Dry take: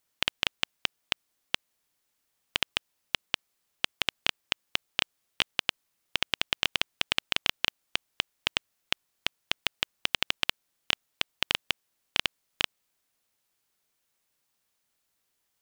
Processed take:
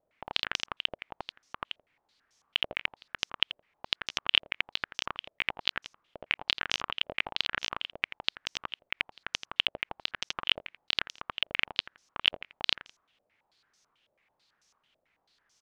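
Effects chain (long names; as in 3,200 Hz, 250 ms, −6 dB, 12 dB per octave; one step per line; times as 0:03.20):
repeating echo 84 ms, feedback 23%, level −11.5 dB
compressor whose output falls as the input rises −34 dBFS, ratio −1
low-pass on a step sequencer 9.1 Hz 610–5,900 Hz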